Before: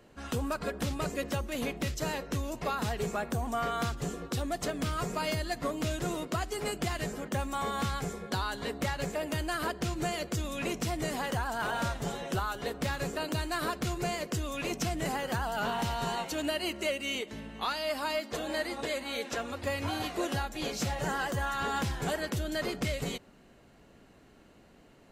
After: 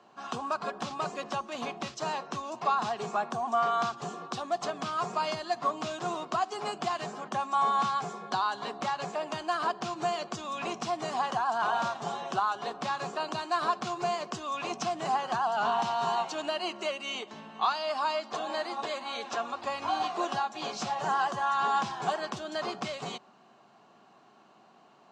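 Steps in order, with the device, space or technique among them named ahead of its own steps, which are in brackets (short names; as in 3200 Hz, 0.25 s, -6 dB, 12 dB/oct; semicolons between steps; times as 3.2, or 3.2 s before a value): television speaker (speaker cabinet 170–6600 Hz, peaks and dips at 180 Hz -4 dB, 280 Hz -9 dB, 500 Hz -8 dB, 760 Hz +9 dB, 1100 Hz +10 dB, 2000 Hz -7 dB)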